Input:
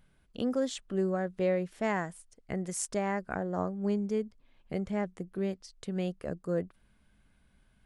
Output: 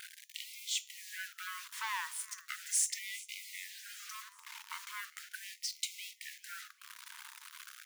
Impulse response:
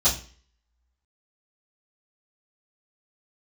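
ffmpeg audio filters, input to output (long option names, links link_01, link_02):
-filter_complex "[0:a]acompressor=threshold=-42dB:ratio=10,equalizer=frequency=720:width_type=o:width=0.47:gain=7,acontrast=74,acrusher=bits=8:mix=0:aa=0.000001,highpass=120,aecho=1:1:396|792|1188|1584:0.0841|0.0488|0.0283|0.0164,volume=35dB,asoftclip=hard,volume=-35dB,asplit=2[link_01][link_02];[link_02]highshelf=frequency=5000:gain=12[link_03];[1:a]atrim=start_sample=2205[link_04];[link_03][link_04]afir=irnorm=-1:irlink=0,volume=-31.5dB[link_05];[link_01][link_05]amix=inputs=2:normalize=0,afftfilt=real='re*gte(b*sr/1024,860*pow(2000/860,0.5+0.5*sin(2*PI*0.38*pts/sr)))':imag='im*gte(b*sr/1024,860*pow(2000/860,0.5+0.5*sin(2*PI*0.38*pts/sr)))':win_size=1024:overlap=0.75,volume=10dB"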